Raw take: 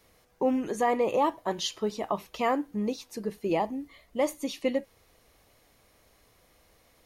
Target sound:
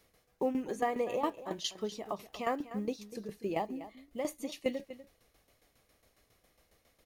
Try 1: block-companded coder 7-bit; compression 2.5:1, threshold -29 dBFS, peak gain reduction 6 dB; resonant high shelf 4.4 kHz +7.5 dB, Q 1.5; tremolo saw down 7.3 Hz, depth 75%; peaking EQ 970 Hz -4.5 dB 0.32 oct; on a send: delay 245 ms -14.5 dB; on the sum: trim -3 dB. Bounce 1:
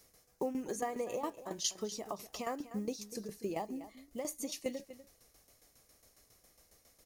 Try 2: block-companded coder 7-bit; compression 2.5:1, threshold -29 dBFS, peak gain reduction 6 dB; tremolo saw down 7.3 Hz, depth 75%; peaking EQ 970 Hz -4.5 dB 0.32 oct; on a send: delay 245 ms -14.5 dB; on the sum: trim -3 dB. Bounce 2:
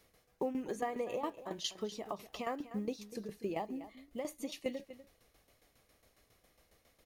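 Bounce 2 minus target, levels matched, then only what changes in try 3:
compression: peak gain reduction +6 dB
remove: compression 2.5:1, threshold -29 dBFS, peak gain reduction 6 dB

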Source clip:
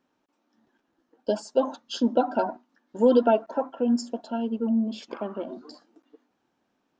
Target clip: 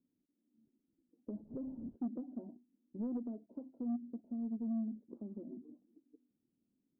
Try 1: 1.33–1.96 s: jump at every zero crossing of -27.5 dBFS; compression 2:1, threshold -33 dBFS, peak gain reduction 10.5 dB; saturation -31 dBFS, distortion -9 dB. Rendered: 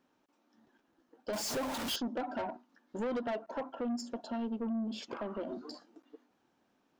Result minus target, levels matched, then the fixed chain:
250 Hz band -3.5 dB
1.33–1.96 s: jump at every zero crossing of -27.5 dBFS; compression 2:1, threshold -33 dBFS, peak gain reduction 10.5 dB; four-pole ladder low-pass 340 Hz, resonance 25%; saturation -31 dBFS, distortion -17 dB

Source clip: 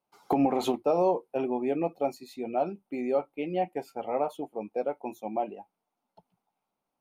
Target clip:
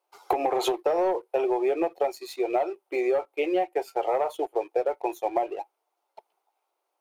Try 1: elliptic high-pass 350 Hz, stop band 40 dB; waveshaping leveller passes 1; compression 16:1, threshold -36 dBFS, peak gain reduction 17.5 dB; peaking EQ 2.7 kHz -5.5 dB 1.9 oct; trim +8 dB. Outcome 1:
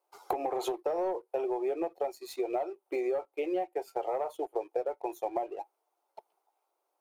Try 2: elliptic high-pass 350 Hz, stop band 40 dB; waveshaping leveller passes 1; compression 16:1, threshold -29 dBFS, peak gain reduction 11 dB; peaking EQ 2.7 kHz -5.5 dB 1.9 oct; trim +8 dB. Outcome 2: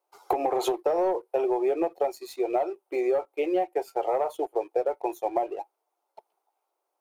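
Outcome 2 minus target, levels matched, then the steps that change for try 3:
2 kHz band -4.0 dB
remove: peaking EQ 2.7 kHz -5.5 dB 1.9 oct

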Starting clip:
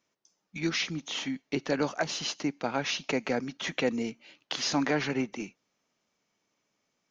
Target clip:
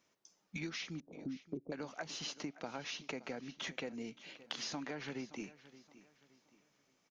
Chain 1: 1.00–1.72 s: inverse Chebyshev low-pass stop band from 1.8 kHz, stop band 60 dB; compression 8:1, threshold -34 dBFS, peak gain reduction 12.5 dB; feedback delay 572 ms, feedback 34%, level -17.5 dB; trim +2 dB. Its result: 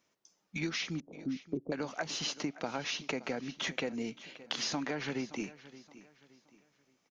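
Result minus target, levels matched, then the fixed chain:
compression: peak gain reduction -7 dB
1.00–1.72 s: inverse Chebyshev low-pass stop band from 1.8 kHz, stop band 60 dB; compression 8:1, threshold -42 dBFS, peak gain reduction 19.5 dB; feedback delay 572 ms, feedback 34%, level -17.5 dB; trim +2 dB

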